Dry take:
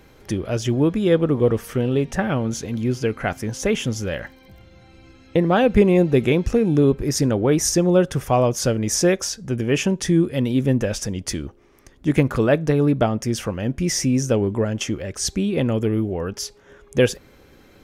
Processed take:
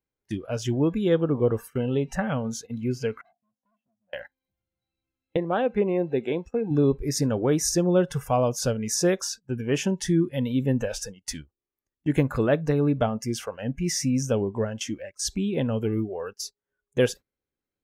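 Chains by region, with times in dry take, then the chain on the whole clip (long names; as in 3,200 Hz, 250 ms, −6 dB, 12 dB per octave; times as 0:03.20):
0:03.21–0:04.13: pair of resonant band-passes 380 Hz, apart 1.7 octaves + hard clipping −35 dBFS
0:05.37–0:06.71: high-pass filter 370 Hz 6 dB per octave + high-shelf EQ 2,200 Hz −8.5 dB
whole clip: noise reduction from a noise print of the clip's start 16 dB; noise gate −32 dBFS, range −20 dB; dynamic equaliser 2,400 Hz, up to −4 dB, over −40 dBFS, Q 3; level −4.5 dB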